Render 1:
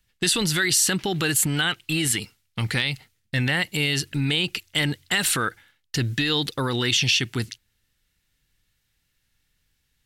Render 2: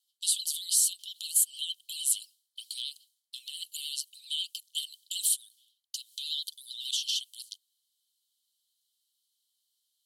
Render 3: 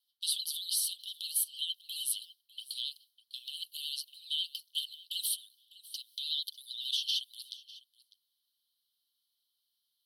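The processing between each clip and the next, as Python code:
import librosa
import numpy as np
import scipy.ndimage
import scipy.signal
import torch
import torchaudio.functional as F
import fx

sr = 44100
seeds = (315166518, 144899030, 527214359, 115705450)

y1 = fx.vibrato(x, sr, rate_hz=13.0, depth_cents=86.0)
y1 = fx.dynamic_eq(y1, sr, hz=4300.0, q=1.4, threshold_db=-38.0, ratio=4.0, max_db=-6)
y1 = scipy.signal.sosfilt(scipy.signal.cheby1(6, 6, 3000.0, 'highpass', fs=sr, output='sos'), y1)
y2 = fx.fixed_phaser(y1, sr, hz=2100.0, stages=6)
y2 = y2 + 10.0 ** (-19.5 / 20.0) * np.pad(y2, (int(601 * sr / 1000.0), 0))[:len(y2)]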